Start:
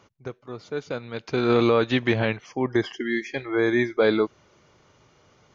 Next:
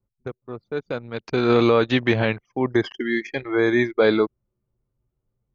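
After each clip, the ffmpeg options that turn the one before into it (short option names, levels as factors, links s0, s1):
-af "anlmdn=1.58,volume=1.33"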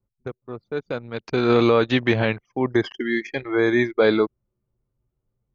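-af anull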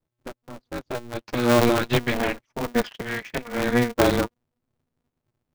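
-af "flanger=delay=5.9:depth=3:regen=19:speed=0.37:shape=triangular,aeval=exprs='val(0)*sgn(sin(2*PI*120*n/s))':c=same"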